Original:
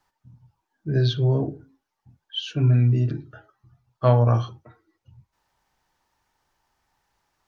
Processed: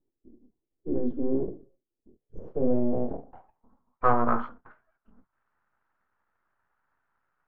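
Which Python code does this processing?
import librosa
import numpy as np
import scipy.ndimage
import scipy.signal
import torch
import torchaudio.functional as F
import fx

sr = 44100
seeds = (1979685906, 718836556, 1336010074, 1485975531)

y = np.abs(x)
y = fx.filter_sweep_lowpass(y, sr, from_hz=360.0, to_hz=1400.0, start_s=1.92, end_s=4.39, q=4.3)
y = y * 10.0 ** (-5.0 / 20.0)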